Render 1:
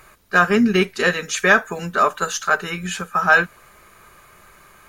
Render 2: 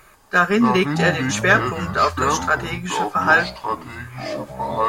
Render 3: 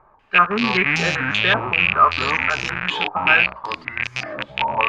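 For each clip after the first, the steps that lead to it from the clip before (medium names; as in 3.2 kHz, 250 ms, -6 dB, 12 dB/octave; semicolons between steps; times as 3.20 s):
ever faster or slower copies 138 ms, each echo -6 st, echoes 3, each echo -6 dB; trim -1 dB
rattle on loud lows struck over -32 dBFS, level -6 dBFS; step-sequenced low-pass 5.2 Hz 910–5800 Hz; trim -6 dB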